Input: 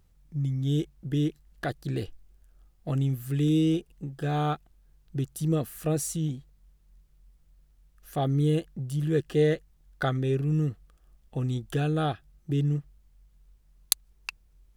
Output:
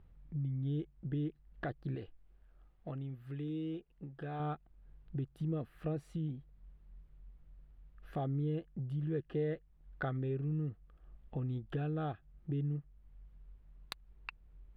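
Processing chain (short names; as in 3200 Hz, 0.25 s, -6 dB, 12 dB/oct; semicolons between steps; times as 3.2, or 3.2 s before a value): air absorption 460 m; compressor 2:1, threshold -46 dBFS, peak gain reduction 14.5 dB; 1.95–4.4 low shelf 340 Hz -7.5 dB; gain +2.5 dB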